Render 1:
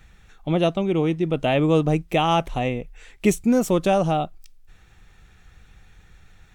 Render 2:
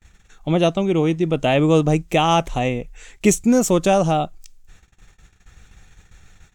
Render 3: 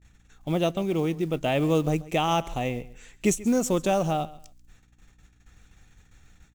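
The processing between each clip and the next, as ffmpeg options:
ffmpeg -i in.wav -af "agate=range=-30dB:threshold=-49dB:ratio=16:detection=peak,equalizer=frequency=6900:width_type=o:width=0.62:gain=9,volume=3dB" out.wav
ffmpeg -i in.wav -af "aecho=1:1:136|272:0.112|0.0258,acrusher=bits=7:mode=log:mix=0:aa=0.000001,aeval=exprs='val(0)+0.00224*(sin(2*PI*60*n/s)+sin(2*PI*2*60*n/s)/2+sin(2*PI*3*60*n/s)/3+sin(2*PI*4*60*n/s)/4+sin(2*PI*5*60*n/s)/5)':channel_layout=same,volume=-7.5dB" out.wav

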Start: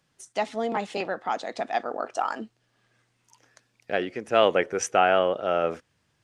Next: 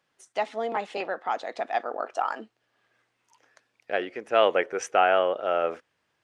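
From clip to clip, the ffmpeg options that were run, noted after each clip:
ffmpeg -i in.wav -af "bass=frequency=250:gain=-14,treble=frequency=4000:gain=-8" out.wav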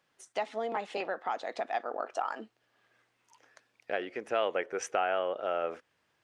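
ffmpeg -i in.wav -af "acompressor=threshold=-33dB:ratio=2" out.wav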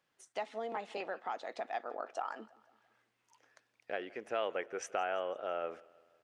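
ffmpeg -i in.wav -af "aecho=1:1:167|334|501|668:0.0708|0.0389|0.0214|0.0118,volume=-5.5dB" out.wav

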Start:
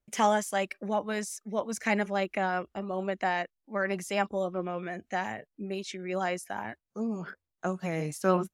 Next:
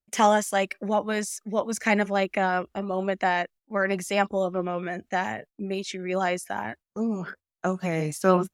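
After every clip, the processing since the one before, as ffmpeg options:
ffmpeg -i in.wav -af "agate=range=-14dB:threshold=-50dB:ratio=16:detection=peak,volume=5dB" out.wav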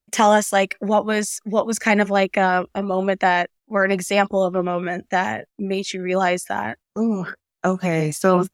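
ffmpeg -i in.wav -af "alimiter=level_in=9.5dB:limit=-1dB:release=50:level=0:latency=1,volume=-3dB" out.wav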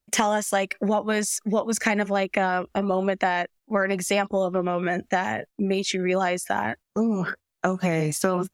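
ffmpeg -i in.wav -af "acompressor=threshold=-22dB:ratio=6,volume=2.5dB" out.wav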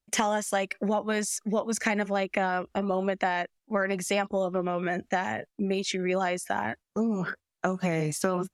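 ffmpeg -i in.wav -af "lowpass=12000,volume=-4dB" out.wav

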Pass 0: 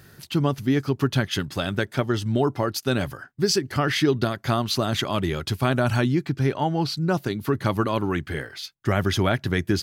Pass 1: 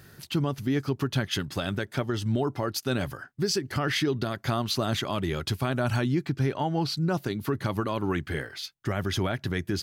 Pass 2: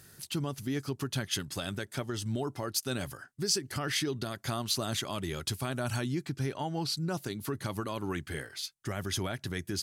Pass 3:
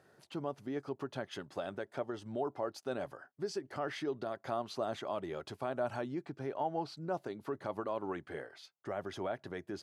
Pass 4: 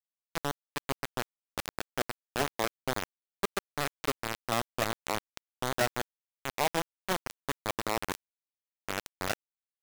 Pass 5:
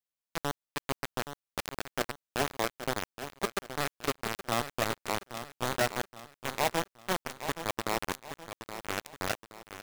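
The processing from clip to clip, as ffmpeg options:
ffmpeg -i in.wav -af "alimiter=limit=-15.5dB:level=0:latency=1:release=136,volume=-1.5dB" out.wav
ffmpeg -i in.wav -af "equalizer=frequency=9100:width=0.62:gain=13,volume=-7dB" out.wav
ffmpeg -i in.wav -af "bandpass=frequency=640:width_type=q:width=1.5:csg=0,volume=3.5dB" out.wav
ffmpeg -i in.wav -af "acrusher=bits=4:mix=0:aa=0.000001,volume=5dB" out.wav
ffmpeg -i in.wav -af "aecho=1:1:822|1644|2466|3288:0.299|0.119|0.0478|0.0191" out.wav

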